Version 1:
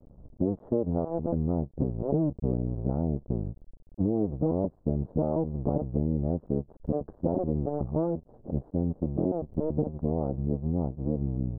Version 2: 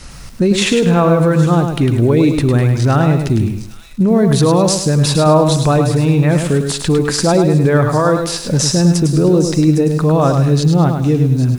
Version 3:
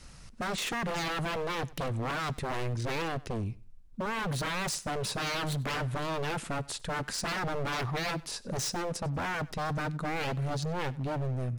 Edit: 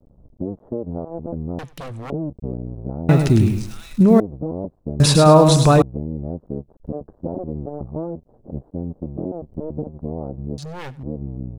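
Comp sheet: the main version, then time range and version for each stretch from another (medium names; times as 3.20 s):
1
1.59–2.10 s: from 3
3.09–4.20 s: from 2
5.00–5.82 s: from 2
10.58–11.03 s: from 3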